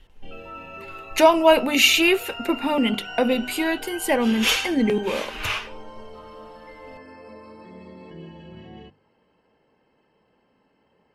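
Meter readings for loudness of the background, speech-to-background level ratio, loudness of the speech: -38.5 LUFS, 18.0 dB, -20.5 LUFS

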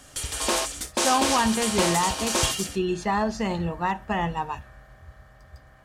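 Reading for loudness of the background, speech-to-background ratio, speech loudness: -25.5 LUFS, -1.0 dB, -26.5 LUFS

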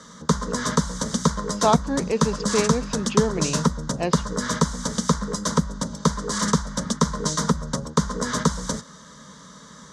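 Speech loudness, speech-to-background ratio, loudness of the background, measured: -26.0 LUFS, -1.5 dB, -24.5 LUFS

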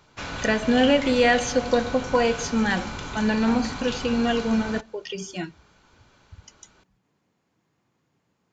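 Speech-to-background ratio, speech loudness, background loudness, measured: 9.5 dB, -23.5 LUFS, -33.0 LUFS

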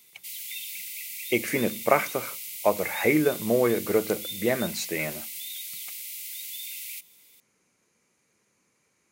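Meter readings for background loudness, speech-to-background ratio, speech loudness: -34.5 LUFS, 8.0 dB, -26.5 LUFS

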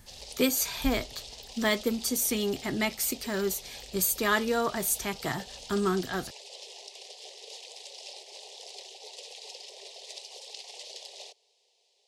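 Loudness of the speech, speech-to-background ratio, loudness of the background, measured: -29.0 LUFS, 14.5 dB, -43.5 LUFS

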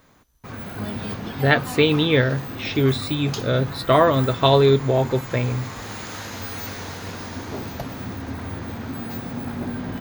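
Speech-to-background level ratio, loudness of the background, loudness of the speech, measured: 12.0 dB, -32.0 LUFS, -20.0 LUFS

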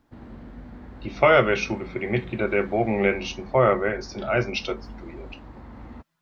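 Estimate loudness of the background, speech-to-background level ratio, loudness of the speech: -43.0 LUFS, 20.0 dB, -23.0 LUFS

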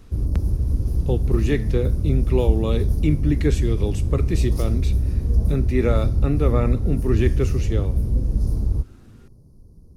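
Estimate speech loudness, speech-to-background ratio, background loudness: -25.0 LUFS, -2.0 dB, -23.0 LUFS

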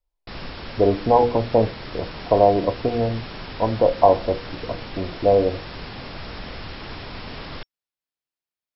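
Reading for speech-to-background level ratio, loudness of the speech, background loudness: 15.5 dB, -20.0 LUFS, -35.5 LUFS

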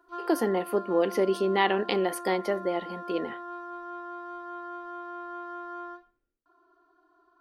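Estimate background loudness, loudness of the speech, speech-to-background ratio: -39.5 LUFS, -27.5 LUFS, 12.0 dB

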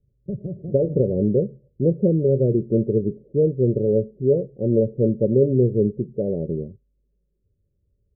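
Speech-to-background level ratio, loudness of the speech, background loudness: 12.5 dB, -21.5 LUFS, -34.0 LUFS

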